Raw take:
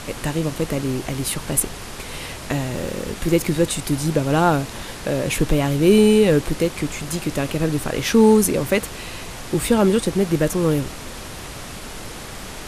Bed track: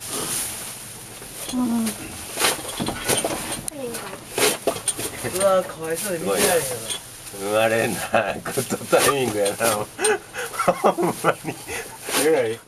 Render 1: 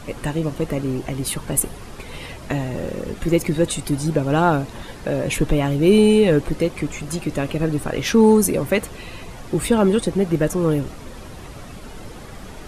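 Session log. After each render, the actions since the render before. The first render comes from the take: noise reduction 10 dB, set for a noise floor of -34 dBFS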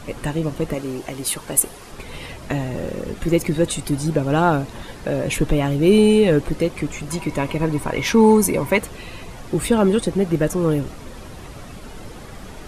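0.74–1.92 s: tone controls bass -9 dB, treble +3 dB; 7.11–8.78 s: small resonant body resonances 970/2200 Hz, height 14 dB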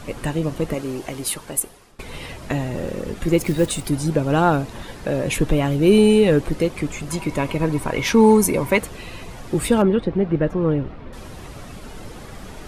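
1.15–1.99 s: fade out, to -18.5 dB; 3.38–3.87 s: block-companded coder 5-bit; 9.82–11.13 s: distance through air 360 m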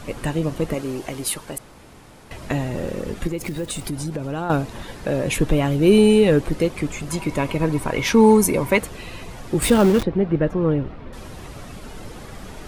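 1.58–2.31 s: room tone; 3.27–4.50 s: compression 4:1, threshold -24 dBFS; 9.62–10.03 s: jump at every zero crossing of -21.5 dBFS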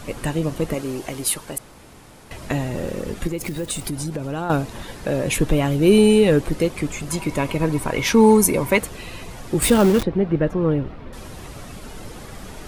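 treble shelf 6 kHz +4.5 dB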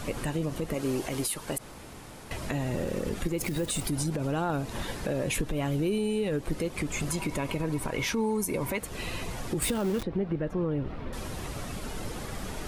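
compression 12:1, threshold -24 dBFS, peak gain reduction 16.5 dB; peak limiter -20 dBFS, peak gain reduction 7 dB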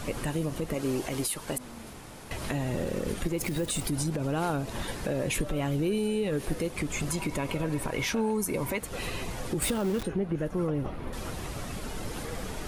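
add bed track -25.5 dB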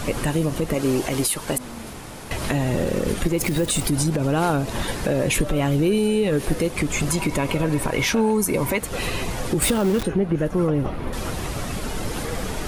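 trim +8.5 dB

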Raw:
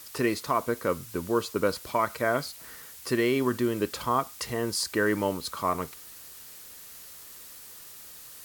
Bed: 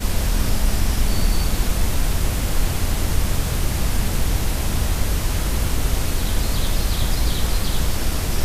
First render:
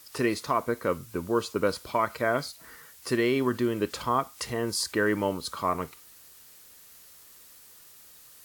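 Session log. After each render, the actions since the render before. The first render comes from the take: noise print and reduce 6 dB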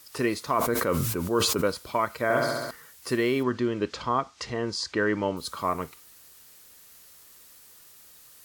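0.50–1.65 s: decay stretcher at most 25 dB/s; 2.23–2.71 s: flutter echo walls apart 11.6 m, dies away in 1.5 s; 3.43–5.37 s: low-pass 6.4 kHz 24 dB/octave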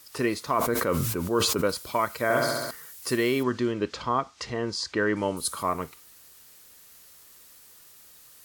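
1.69–3.72 s: treble shelf 5.1 kHz +8 dB; 5.16–5.63 s: peaking EQ 10 kHz +14 dB 0.79 oct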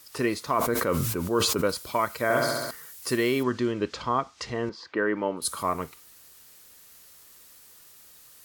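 4.69–5.42 s: band-pass 210–2300 Hz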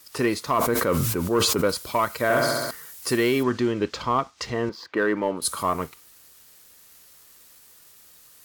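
waveshaping leveller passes 1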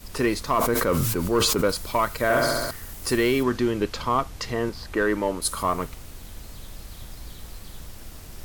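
add bed -20 dB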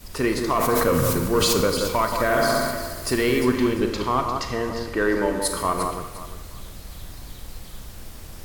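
on a send: echo whose repeats swap between lows and highs 175 ms, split 1.7 kHz, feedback 53%, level -5 dB; on the sum: Schroeder reverb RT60 0.95 s, combs from 32 ms, DRR 7 dB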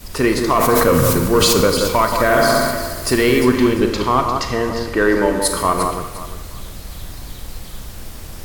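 trim +6.5 dB; peak limiter -3 dBFS, peak gain reduction 1 dB

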